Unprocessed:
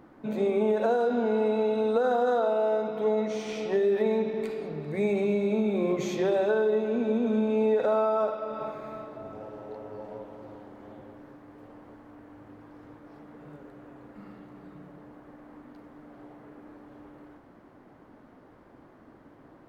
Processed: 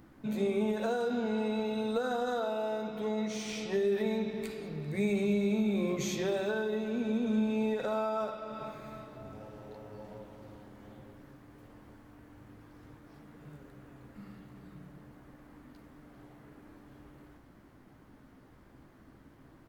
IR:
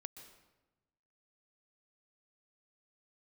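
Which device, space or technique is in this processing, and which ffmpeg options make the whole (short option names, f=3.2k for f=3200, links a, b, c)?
smiley-face EQ: -filter_complex "[0:a]lowshelf=f=120:g=5.5,equalizer=f=610:t=o:w=2.6:g=-9,highshelf=f=5.7k:g=8,asplit=2[a][b];[b]adelay=15,volume=-11.5dB[c];[a][c]amix=inputs=2:normalize=0"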